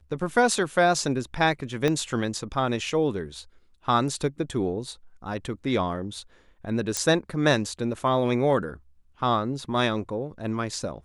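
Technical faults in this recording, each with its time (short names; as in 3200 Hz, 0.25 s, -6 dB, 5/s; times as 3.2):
1.88 pop -12 dBFS
6.97 pop -11 dBFS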